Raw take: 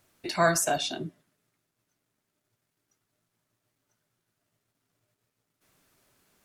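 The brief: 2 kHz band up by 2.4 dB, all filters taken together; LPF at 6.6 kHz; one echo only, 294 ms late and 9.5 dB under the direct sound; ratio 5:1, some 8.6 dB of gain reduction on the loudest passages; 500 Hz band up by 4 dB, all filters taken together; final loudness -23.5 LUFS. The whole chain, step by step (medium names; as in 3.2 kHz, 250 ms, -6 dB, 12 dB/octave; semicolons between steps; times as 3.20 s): low-pass 6.6 kHz; peaking EQ 500 Hz +6 dB; peaking EQ 2 kHz +3 dB; compression 5:1, threshold -24 dBFS; delay 294 ms -9.5 dB; trim +7.5 dB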